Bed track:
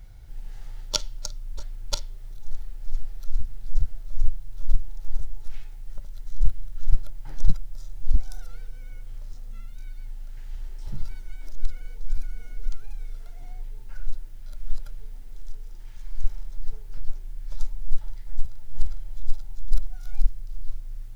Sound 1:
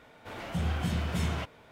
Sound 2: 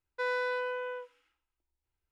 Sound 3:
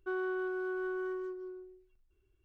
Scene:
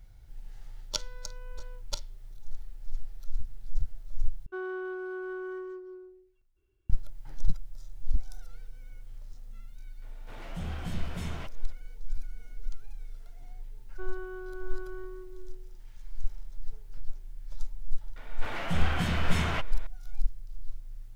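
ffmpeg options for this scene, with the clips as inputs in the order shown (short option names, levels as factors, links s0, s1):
-filter_complex "[3:a]asplit=2[s0][s1];[1:a]asplit=2[s2][s3];[0:a]volume=0.447[s4];[2:a]acompressor=threshold=0.0158:ratio=6:attack=3.2:release=140:knee=1:detection=peak[s5];[s3]equalizer=f=1700:w=0.53:g=7[s6];[s4]asplit=2[s7][s8];[s7]atrim=end=4.464[s9];[s0]atrim=end=2.44,asetpts=PTS-STARTPTS,volume=0.891[s10];[s8]atrim=start=6.896[s11];[s5]atrim=end=2.11,asetpts=PTS-STARTPTS,volume=0.2,afade=t=in:d=0.004:c=hsin,afade=t=out:st=2.106:d=0.004:c=hsin,adelay=760[s12];[s2]atrim=end=1.71,asetpts=PTS-STARTPTS,volume=0.473,afade=t=in:d=0.004:c=hsin,afade=t=out:st=1.706:d=0.004:c=hsin,adelay=441882S[s13];[s1]atrim=end=2.44,asetpts=PTS-STARTPTS,volume=0.501,afade=t=in:d=0.004:c=hsin,afade=t=out:st=2.436:d=0.004:c=hsin,adelay=13920[s14];[s6]atrim=end=1.71,asetpts=PTS-STARTPTS,afade=t=in:d=0.004:c=hsin,afade=t=out:st=1.706:d=0.004:c=hsin,adelay=18160[s15];[s9][s10]acrossfade=d=0.004:c1=hsin:c2=hsin[s16];[s16][s11]acrossfade=d=0.004:c1=hsin:c2=hsin[s17];[s17][s12][s13][s14][s15]amix=inputs=5:normalize=0"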